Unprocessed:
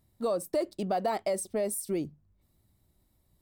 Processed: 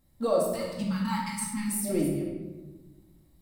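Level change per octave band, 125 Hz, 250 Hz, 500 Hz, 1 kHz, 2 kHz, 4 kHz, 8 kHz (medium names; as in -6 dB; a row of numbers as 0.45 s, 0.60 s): +9.0 dB, +6.5 dB, +0.5 dB, -1.0 dB, +5.5 dB, +4.5 dB, +4.0 dB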